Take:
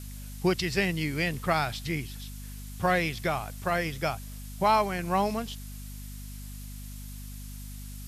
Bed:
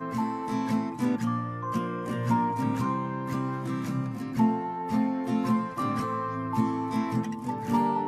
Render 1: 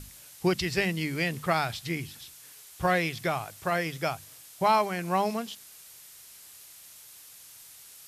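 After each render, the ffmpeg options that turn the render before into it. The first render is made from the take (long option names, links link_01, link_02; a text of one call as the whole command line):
ffmpeg -i in.wav -af "bandreject=frequency=50:width_type=h:width=6,bandreject=frequency=100:width_type=h:width=6,bandreject=frequency=150:width_type=h:width=6,bandreject=frequency=200:width_type=h:width=6,bandreject=frequency=250:width_type=h:width=6" out.wav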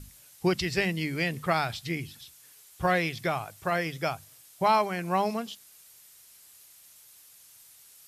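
ffmpeg -i in.wav -af "afftdn=noise_reduction=6:noise_floor=-50" out.wav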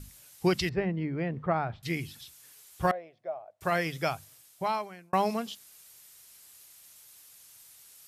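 ffmpeg -i in.wav -filter_complex "[0:a]asettb=1/sr,asplit=3[link_01][link_02][link_03];[link_01]atrim=end=0.694[link_04];[link_02]atrim=start=0.69:end=1.83,asetpts=PTS-STARTPTS,afade=type=in:duration=0.004:curve=qsin,afade=type=out:start_time=1.136:duration=0.004:curve=qsin,lowpass=1100[link_05];[link_03]atrim=start=1.826[link_06];[link_04][link_05]acrossfade=duration=0.004:curve1=hsin:curve2=qsin[link_07];[link_07][link_06]acrossfade=duration=0.004:curve1=qsin:curve2=hsin,asettb=1/sr,asplit=3[link_08][link_09][link_10];[link_08]atrim=end=2.914[link_11];[link_09]atrim=start=2.91:end=3.61,asetpts=PTS-STARTPTS,afade=type=in:duration=0.004:curve=qsin,afade=type=out:start_time=0.696:duration=0.004:curve=qsin,bandpass=frequency=620:width_type=q:width=7.6[link_12];[link_10]atrim=start=3.606[link_13];[link_11][link_12]acrossfade=duration=0.004:curve1=hsin:curve2=qsin[link_14];[link_14][link_13]acrossfade=duration=0.004:curve1=qsin:curve2=hsin,asplit=2[link_15][link_16];[link_15]atrim=end=5.13,asetpts=PTS-STARTPTS,afade=type=out:start_time=4.14:duration=0.99[link_17];[link_16]atrim=start=5.13,asetpts=PTS-STARTPTS,afade=type=in:duration=0.004:curve=hsin[link_18];[link_17][link_18]concat=n=2:v=0:a=1" out.wav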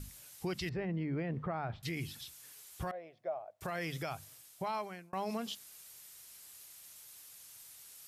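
ffmpeg -i in.wav -af "acompressor=threshold=-31dB:ratio=3,alimiter=level_in=5dB:limit=-24dB:level=0:latency=1:release=34,volume=-5dB" out.wav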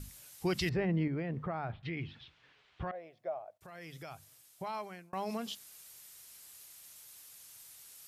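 ffmpeg -i in.wav -filter_complex "[0:a]asettb=1/sr,asplit=3[link_01][link_02][link_03];[link_01]atrim=end=0.454[link_04];[link_02]atrim=start=0.45:end=1.08,asetpts=PTS-STARTPTS,afade=type=in:duration=0.004:curve=qsin,afade=type=out:start_time=0.626:duration=0.004:curve=qsin,acontrast=33[link_05];[link_03]atrim=start=1.076[link_06];[link_04][link_05]acrossfade=duration=0.004:curve1=hsin:curve2=qsin[link_07];[link_07][link_06]acrossfade=duration=0.004:curve1=qsin:curve2=hsin,asettb=1/sr,asplit=3[link_08][link_09][link_10];[link_08]atrim=end=1.724[link_11];[link_09]atrim=start=1.72:end=2.95,asetpts=PTS-STARTPTS,afade=type=in:duration=0.004:curve=qsin,afade=type=out:start_time=1.226:duration=0.004:curve=qsin,lowpass=frequency=3200:width=0.5412,lowpass=frequency=3200:width=1.3066[link_12];[link_10]atrim=start=2.946[link_13];[link_11][link_12]acrossfade=duration=0.004:curve1=hsin:curve2=qsin[link_14];[link_14][link_13]acrossfade=duration=0.004:curve1=qsin:curve2=hsin,asplit=2[link_15][link_16];[link_15]atrim=end=3.58,asetpts=PTS-STARTPTS,afade=type=out:start_time=3.576:duration=0.004:curve=hsin:silence=0.188365[link_17];[link_16]atrim=start=3.58,asetpts=PTS-STARTPTS,afade=type=in:duration=1.63:silence=0.188365[link_18];[link_17][link_18]concat=n=2:v=0:a=1" out.wav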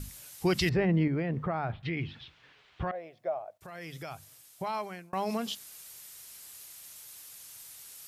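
ffmpeg -i in.wav -af "volume=5.5dB" out.wav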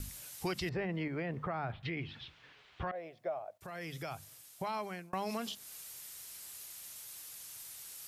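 ffmpeg -i in.wav -filter_complex "[0:a]acrossover=split=460|1100[link_01][link_02][link_03];[link_01]acompressor=threshold=-40dB:ratio=4[link_04];[link_02]acompressor=threshold=-41dB:ratio=4[link_05];[link_03]acompressor=threshold=-41dB:ratio=4[link_06];[link_04][link_05][link_06]amix=inputs=3:normalize=0" out.wav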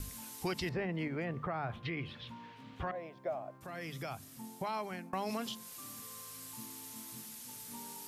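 ffmpeg -i in.wav -i bed.wav -filter_complex "[1:a]volume=-25.5dB[link_01];[0:a][link_01]amix=inputs=2:normalize=0" out.wav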